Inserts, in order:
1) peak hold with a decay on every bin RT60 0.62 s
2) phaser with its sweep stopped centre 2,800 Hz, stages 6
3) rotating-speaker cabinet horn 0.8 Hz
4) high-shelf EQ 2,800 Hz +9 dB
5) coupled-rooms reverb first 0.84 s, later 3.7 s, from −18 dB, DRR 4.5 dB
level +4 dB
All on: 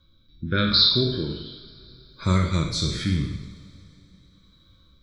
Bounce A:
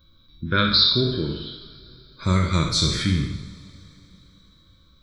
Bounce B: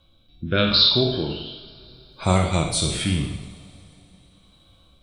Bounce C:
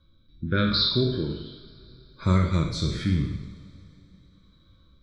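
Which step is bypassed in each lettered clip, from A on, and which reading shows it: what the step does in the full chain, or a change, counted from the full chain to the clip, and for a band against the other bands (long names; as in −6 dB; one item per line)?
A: 3, 8 kHz band +4.5 dB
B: 2, 8 kHz band +7.0 dB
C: 4, 8 kHz band −7.0 dB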